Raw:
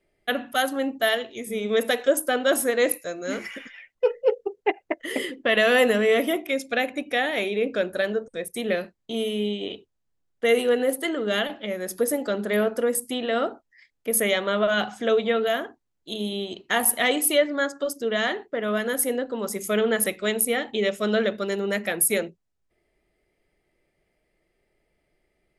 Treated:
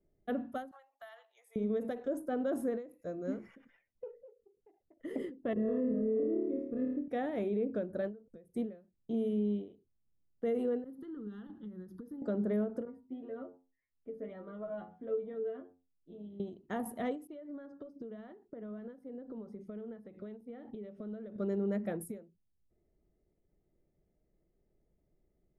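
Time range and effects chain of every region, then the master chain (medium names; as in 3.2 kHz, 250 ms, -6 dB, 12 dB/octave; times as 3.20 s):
0.71–1.56 s: steep high-pass 780 Hz + compression 4:1, threshold -31 dBFS
5.53–7.08 s: boxcar filter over 58 samples + flutter echo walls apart 4.7 m, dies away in 0.89 s
10.84–12.22 s: compression 3:1, threshold -36 dBFS + bass shelf 470 Hz +2.5 dB + static phaser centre 2.3 kHz, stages 6
12.85–16.40 s: distance through air 310 m + inharmonic resonator 87 Hz, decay 0.29 s, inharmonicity 0.002
17.27–21.36 s: compression 16:1, threshold -35 dBFS + Savitzky-Golay filter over 15 samples
whole clip: FFT filter 200 Hz 0 dB, 1.3 kHz -16 dB, 2.6 kHz -28 dB; peak limiter -25.5 dBFS; endings held to a fixed fall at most 150 dB/s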